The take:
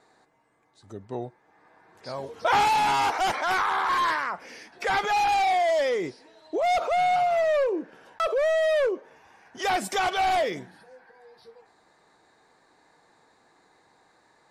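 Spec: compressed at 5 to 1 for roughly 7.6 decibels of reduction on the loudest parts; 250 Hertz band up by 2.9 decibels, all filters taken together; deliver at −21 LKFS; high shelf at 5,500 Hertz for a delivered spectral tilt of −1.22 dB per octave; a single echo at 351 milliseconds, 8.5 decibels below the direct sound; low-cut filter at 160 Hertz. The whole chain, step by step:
high-pass filter 160 Hz
parametric band 250 Hz +5 dB
high-shelf EQ 5,500 Hz −4.5 dB
downward compressor 5 to 1, threshold −28 dBFS
single-tap delay 351 ms −8.5 dB
level +9.5 dB

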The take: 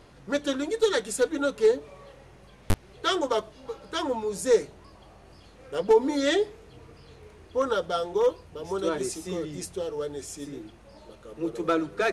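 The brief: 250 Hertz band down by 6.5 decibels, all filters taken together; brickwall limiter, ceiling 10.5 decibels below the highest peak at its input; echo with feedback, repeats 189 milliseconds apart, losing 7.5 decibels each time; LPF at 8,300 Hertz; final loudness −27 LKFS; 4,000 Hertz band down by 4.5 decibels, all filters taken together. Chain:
low-pass filter 8,300 Hz
parametric band 250 Hz −9 dB
parametric band 4,000 Hz −5.5 dB
brickwall limiter −22 dBFS
repeating echo 189 ms, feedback 42%, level −7.5 dB
level +6.5 dB

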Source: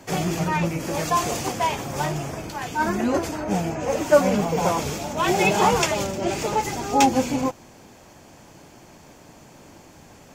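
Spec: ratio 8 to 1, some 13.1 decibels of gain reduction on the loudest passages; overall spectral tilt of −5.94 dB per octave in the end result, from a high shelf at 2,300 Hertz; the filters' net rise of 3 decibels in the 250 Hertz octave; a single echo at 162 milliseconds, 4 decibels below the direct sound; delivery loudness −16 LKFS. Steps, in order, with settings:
parametric band 250 Hz +4 dB
high-shelf EQ 2,300 Hz −8 dB
downward compressor 8 to 1, threshold −23 dBFS
single-tap delay 162 ms −4 dB
level +11 dB

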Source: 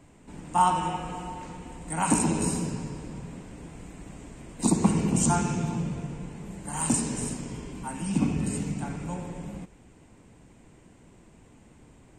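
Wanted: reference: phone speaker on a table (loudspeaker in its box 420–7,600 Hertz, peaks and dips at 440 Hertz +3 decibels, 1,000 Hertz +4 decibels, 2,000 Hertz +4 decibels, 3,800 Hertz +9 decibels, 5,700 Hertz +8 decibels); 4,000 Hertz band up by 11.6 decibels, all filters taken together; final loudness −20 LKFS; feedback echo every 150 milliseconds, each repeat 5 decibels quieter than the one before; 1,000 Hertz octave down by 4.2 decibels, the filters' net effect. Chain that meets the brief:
loudspeaker in its box 420–7,600 Hz, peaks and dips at 440 Hz +3 dB, 1,000 Hz +4 dB, 2,000 Hz +4 dB, 3,800 Hz +9 dB, 5,700 Hz +8 dB
parametric band 1,000 Hz −8 dB
parametric band 4,000 Hz +8.5 dB
repeating echo 150 ms, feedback 56%, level −5 dB
level +9.5 dB

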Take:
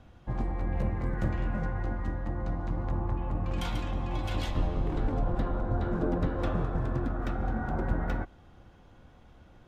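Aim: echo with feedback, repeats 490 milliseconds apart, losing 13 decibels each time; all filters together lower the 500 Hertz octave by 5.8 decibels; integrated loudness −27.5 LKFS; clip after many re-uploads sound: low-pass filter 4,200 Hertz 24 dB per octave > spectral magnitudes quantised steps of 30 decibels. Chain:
low-pass filter 4,200 Hz 24 dB per octave
parametric band 500 Hz −8 dB
repeating echo 490 ms, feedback 22%, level −13 dB
spectral magnitudes quantised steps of 30 dB
level +5.5 dB

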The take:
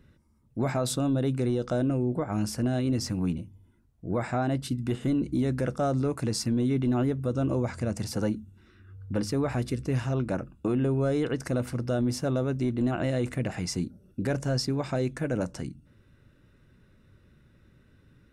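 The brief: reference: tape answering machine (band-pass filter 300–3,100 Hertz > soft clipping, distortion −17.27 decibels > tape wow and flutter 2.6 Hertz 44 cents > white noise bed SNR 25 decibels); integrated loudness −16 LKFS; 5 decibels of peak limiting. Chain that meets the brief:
brickwall limiter −24.5 dBFS
band-pass filter 300–3,100 Hz
soft clipping −29 dBFS
tape wow and flutter 2.6 Hz 44 cents
white noise bed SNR 25 dB
level +23 dB

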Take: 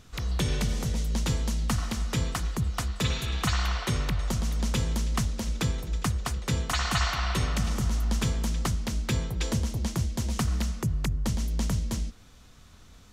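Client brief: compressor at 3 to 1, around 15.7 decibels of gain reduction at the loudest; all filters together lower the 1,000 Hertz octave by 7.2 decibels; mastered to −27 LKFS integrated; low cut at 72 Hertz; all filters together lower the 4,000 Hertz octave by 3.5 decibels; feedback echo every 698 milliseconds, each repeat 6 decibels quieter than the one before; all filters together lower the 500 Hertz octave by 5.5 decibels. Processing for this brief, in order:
high-pass filter 72 Hz
parametric band 500 Hz −5 dB
parametric band 1,000 Hz −8 dB
parametric band 4,000 Hz −4 dB
downward compressor 3 to 1, threshold −47 dBFS
repeating echo 698 ms, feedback 50%, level −6 dB
level +18 dB

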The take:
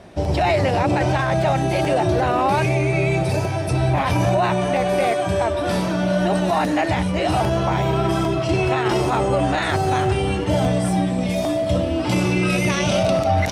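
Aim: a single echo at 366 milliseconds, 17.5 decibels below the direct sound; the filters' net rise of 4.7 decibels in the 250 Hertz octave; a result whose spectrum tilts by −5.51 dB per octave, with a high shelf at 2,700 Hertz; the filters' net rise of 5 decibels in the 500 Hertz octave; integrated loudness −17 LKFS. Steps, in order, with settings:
parametric band 250 Hz +5 dB
parametric band 500 Hz +6 dB
high-shelf EQ 2,700 Hz −7.5 dB
single-tap delay 366 ms −17.5 dB
level −0.5 dB

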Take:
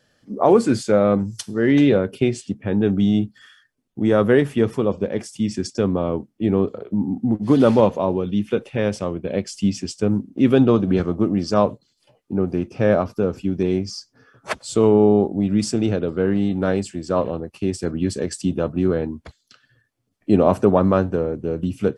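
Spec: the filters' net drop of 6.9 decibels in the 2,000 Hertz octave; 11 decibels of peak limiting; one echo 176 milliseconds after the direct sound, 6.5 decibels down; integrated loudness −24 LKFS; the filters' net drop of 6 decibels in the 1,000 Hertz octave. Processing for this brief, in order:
parametric band 1,000 Hz −7 dB
parametric band 2,000 Hz −6.5 dB
brickwall limiter −14 dBFS
single-tap delay 176 ms −6.5 dB
level +0.5 dB

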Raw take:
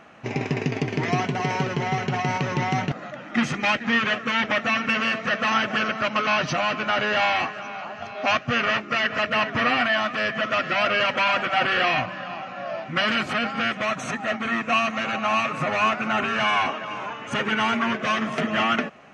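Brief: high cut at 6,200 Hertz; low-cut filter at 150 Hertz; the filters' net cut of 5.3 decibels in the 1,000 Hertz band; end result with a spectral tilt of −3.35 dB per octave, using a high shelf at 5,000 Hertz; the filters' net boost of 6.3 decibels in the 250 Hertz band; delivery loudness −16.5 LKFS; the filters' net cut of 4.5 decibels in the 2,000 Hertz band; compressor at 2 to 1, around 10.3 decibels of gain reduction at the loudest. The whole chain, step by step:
high-pass filter 150 Hz
low-pass filter 6,200 Hz
parametric band 250 Hz +8.5 dB
parametric band 1,000 Hz −6.5 dB
parametric band 2,000 Hz −5 dB
high-shelf EQ 5,000 Hz +5.5 dB
downward compressor 2 to 1, threshold −31 dBFS
level +14 dB

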